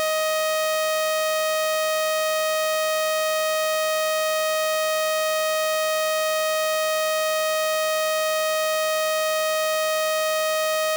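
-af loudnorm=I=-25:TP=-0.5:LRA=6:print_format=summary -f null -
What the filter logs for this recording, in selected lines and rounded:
Input Integrated:    -22.1 LUFS
Input True Peak:     -15.9 dBTP
Input LRA:             0.0 LU
Input Threshold:     -32.1 LUFS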